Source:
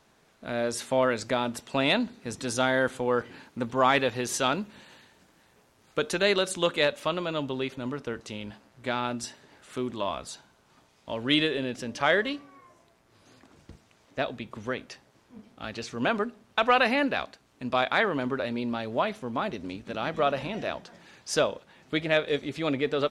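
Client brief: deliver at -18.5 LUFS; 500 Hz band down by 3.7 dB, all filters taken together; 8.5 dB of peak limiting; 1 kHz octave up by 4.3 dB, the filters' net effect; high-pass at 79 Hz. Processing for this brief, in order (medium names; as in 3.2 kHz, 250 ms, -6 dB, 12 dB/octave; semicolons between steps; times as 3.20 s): high-pass 79 Hz; peaking EQ 500 Hz -7.5 dB; peaking EQ 1 kHz +8 dB; trim +11.5 dB; peak limiter -2.5 dBFS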